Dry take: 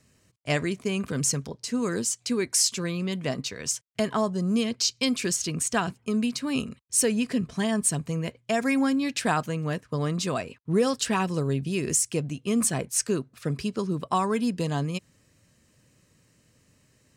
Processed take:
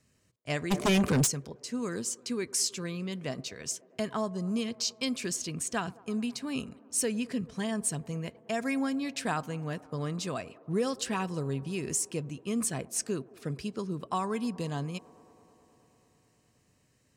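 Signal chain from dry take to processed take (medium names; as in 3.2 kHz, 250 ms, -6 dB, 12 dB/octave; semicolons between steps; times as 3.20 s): feedback echo behind a band-pass 107 ms, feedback 84%, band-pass 580 Hz, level -21 dB; 0.70–1.26 s: sine folder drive 13 dB -> 9 dB, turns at -14 dBFS; trim -6.5 dB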